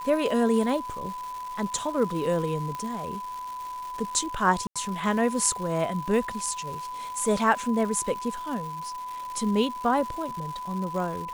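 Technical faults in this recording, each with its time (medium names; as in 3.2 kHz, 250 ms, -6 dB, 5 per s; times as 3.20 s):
crackle 440 per s -35 dBFS
whine 1 kHz -33 dBFS
2.75 s: pop -20 dBFS
4.67–4.76 s: dropout 86 ms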